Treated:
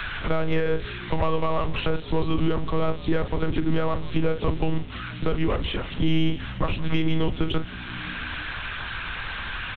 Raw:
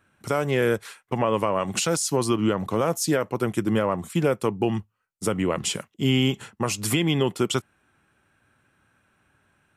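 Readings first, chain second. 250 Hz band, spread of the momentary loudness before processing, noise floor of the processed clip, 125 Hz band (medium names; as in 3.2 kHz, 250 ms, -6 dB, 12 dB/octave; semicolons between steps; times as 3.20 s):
-1.5 dB, 6 LU, -36 dBFS, +0.5 dB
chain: zero-crossing glitches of -22 dBFS; hum notches 60/120/180/240/300/360/420/480 Hz; doubling 39 ms -11 dB; monotone LPC vocoder at 8 kHz 160 Hz; in parallel at -6.5 dB: saturation -18 dBFS, distortion -12 dB; on the sum: bass shelf 120 Hz +8.5 dB; on a send: frequency-shifting echo 160 ms, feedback 63%, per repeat -61 Hz, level -21.5 dB; on the sum: three bands compressed up and down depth 70%; trim -4.5 dB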